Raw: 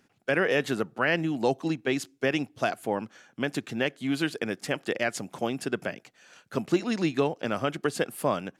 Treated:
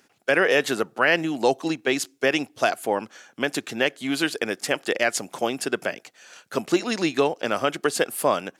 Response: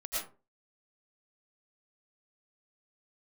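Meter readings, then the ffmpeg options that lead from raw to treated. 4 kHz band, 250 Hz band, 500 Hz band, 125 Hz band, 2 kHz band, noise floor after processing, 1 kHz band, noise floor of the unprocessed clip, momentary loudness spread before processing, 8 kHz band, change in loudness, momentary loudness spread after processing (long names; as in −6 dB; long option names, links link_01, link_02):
+7.5 dB, +2.0 dB, +5.0 dB, −3.5 dB, +6.0 dB, −62 dBFS, +6.0 dB, −66 dBFS, 7 LU, +9.5 dB, +5.0 dB, 8 LU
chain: -af "bass=frequency=250:gain=-11,treble=frequency=4000:gain=4,volume=6dB"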